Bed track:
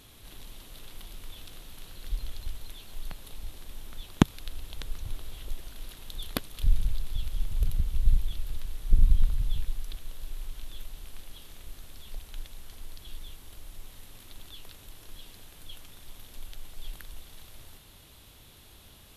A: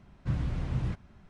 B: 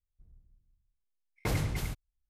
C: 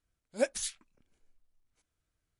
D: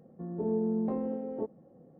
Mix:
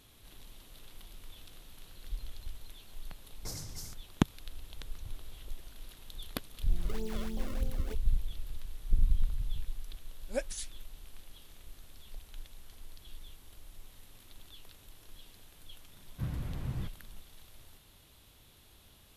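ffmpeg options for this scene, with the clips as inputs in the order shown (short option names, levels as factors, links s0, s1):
-filter_complex "[0:a]volume=0.473[s0];[2:a]highshelf=f=3900:t=q:w=3:g=11.5[s1];[4:a]acrusher=samples=31:mix=1:aa=0.000001:lfo=1:lforange=49.6:lforate=3.2[s2];[s1]atrim=end=2.29,asetpts=PTS-STARTPTS,volume=0.178,afade=t=in:d=0.004:c=hsin,afade=t=out:st=2.286:d=0.004:c=hsin,adelay=2000[s3];[s2]atrim=end=1.99,asetpts=PTS-STARTPTS,volume=0.282,afade=t=in:d=0.004:c=hsin,afade=t=out:st=1.986:d=0.004:c=hsin,adelay=6490[s4];[3:a]atrim=end=2.39,asetpts=PTS-STARTPTS,volume=0.531,afade=t=in:d=0.004:c=hsin,afade=t=out:st=2.386:d=0.004:c=hsin,adelay=9950[s5];[1:a]atrim=end=1.29,asetpts=PTS-STARTPTS,volume=0.501,afade=t=in:d=0.004:c=hsin,afade=t=out:st=1.286:d=0.004:c=hsin,adelay=15930[s6];[s0][s3][s4][s5][s6]amix=inputs=5:normalize=0"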